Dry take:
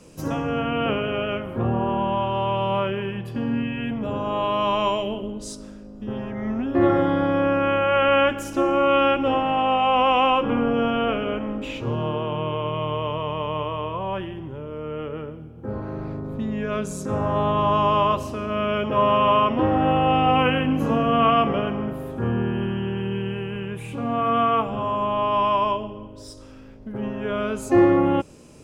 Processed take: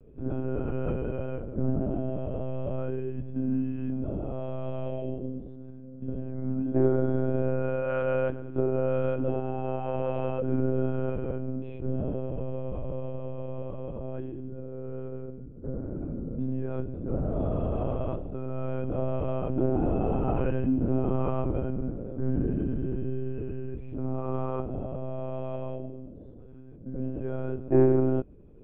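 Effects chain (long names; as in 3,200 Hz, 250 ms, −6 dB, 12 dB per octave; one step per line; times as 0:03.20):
moving average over 45 samples
one-pitch LPC vocoder at 8 kHz 130 Hz
level −2 dB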